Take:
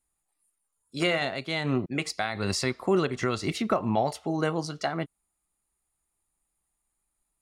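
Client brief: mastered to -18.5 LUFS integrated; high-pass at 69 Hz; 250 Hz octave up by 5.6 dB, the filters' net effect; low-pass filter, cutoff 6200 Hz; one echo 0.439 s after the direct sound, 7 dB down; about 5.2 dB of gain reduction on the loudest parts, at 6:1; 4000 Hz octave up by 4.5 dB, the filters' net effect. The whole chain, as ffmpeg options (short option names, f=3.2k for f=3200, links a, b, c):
-af "highpass=69,lowpass=6.2k,equalizer=f=250:t=o:g=7.5,equalizer=f=4k:t=o:g=6.5,acompressor=threshold=-22dB:ratio=6,aecho=1:1:439:0.447,volume=9.5dB"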